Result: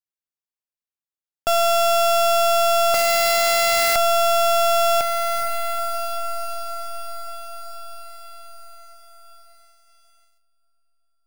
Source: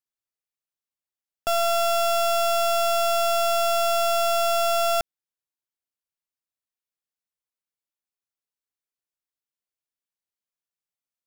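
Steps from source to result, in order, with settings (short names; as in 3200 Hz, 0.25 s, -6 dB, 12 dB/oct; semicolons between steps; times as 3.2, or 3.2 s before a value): diffused feedback echo 0.45 s, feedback 67%, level -13 dB; 2.94–3.96 wrapped overs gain 21 dB; sample leveller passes 3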